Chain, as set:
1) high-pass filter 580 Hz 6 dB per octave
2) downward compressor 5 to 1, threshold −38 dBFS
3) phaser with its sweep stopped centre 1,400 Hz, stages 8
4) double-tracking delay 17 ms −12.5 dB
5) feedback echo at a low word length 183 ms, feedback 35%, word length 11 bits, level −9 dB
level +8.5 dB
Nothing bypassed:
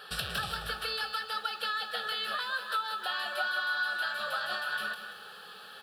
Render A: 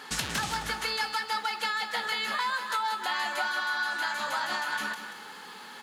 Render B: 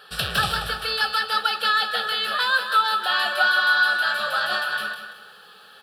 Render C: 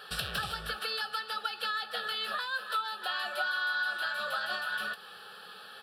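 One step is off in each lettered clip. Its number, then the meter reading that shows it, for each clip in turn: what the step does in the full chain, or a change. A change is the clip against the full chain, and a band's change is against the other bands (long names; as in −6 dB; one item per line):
3, change in integrated loudness +2.5 LU
2, average gain reduction 8.5 dB
5, change in momentary loudness spread +1 LU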